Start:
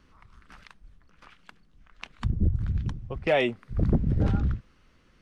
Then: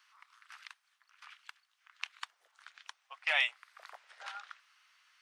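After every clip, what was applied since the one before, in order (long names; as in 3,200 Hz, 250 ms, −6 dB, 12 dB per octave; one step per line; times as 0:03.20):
Bessel high-pass filter 1,500 Hz, order 8
level +2.5 dB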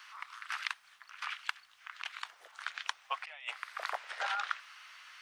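bass and treble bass +3 dB, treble −4 dB
compressor whose output falls as the input rises −47 dBFS, ratio −1
level +8 dB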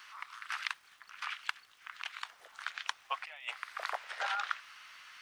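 surface crackle 390 per second −57 dBFS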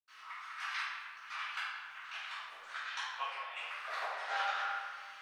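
convolution reverb RT60 1.7 s, pre-delay 77 ms
level +17.5 dB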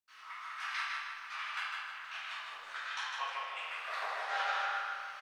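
repeating echo 152 ms, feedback 41%, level −4 dB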